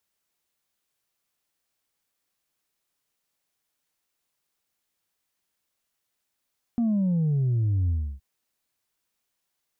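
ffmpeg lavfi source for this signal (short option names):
-f lavfi -i "aevalsrc='0.0891*clip((1.42-t)/0.31,0,1)*tanh(1.19*sin(2*PI*240*1.42/log(65/240)*(exp(log(65/240)*t/1.42)-1)))/tanh(1.19)':d=1.42:s=44100"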